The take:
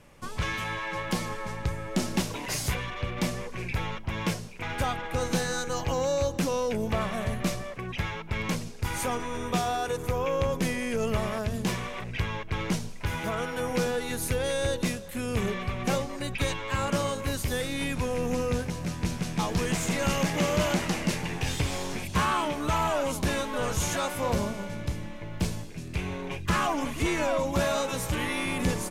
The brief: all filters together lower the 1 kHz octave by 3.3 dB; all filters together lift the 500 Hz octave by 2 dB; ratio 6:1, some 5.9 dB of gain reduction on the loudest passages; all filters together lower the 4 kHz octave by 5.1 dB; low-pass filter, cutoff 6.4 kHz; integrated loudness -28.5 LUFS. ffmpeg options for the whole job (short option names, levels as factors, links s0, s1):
-af "lowpass=6400,equalizer=f=500:t=o:g=3.5,equalizer=f=1000:t=o:g=-5,equalizer=f=4000:t=o:g=-6,acompressor=threshold=0.0398:ratio=6,volume=1.78"